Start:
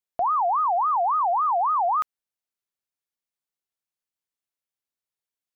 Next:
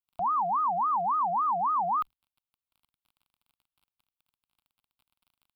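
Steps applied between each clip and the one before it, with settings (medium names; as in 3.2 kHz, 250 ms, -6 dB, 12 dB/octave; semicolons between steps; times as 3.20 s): octave divider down 2 oct, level -2 dB; crackle 26 per s -45 dBFS; static phaser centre 1.8 kHz, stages 6; trim -3.5 dB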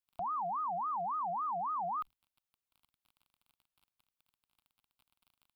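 peak limiter -32 dBFS, peak gain reduction 10 dB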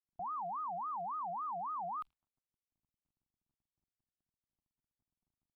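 level-controlled noise filter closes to 350 Hz, open at -33.5 dBFS; trim -4 dB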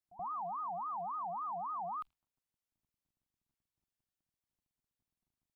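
pre-echo 79 ms -17 dB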